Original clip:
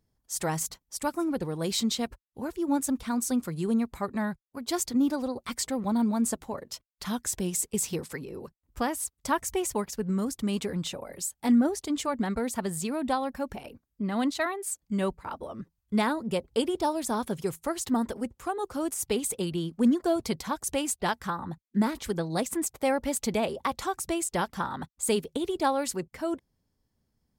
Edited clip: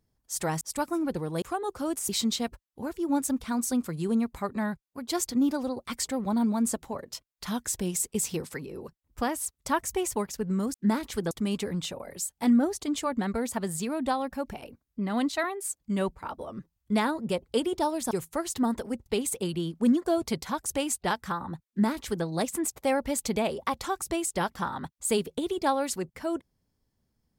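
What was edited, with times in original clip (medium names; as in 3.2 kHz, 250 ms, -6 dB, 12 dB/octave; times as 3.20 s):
0.61–0.87 s: delete
17.13–17.42 s: delete
18.37–19.04 s: move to 1.68 s
21.66–22.23 s: copy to 10.33 s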